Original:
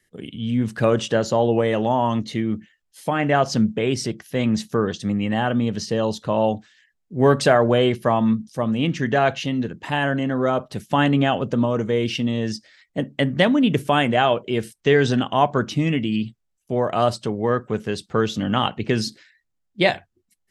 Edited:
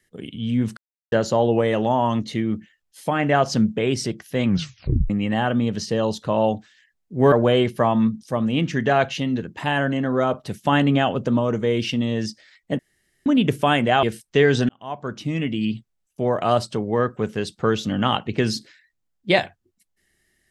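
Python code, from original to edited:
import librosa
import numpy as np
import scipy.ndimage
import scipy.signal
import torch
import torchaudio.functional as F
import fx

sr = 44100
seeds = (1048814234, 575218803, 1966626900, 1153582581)

y = fx.edit(x, sr, fx.silence(start_s=0.77, length_s=0.35),
    fx.tape_stop(start_s=4.46, length_s=0.64),
    fx.cut(start_s=7.32, length_s=0.26),
    fx.room_tone_fill(start_s=13.05, length_s=0.47),
    fx.cut(start_s=14.29, length_s=0.25),
    fx.fade_in_span(start_s=15.2, length_s=1.04), tone=tone)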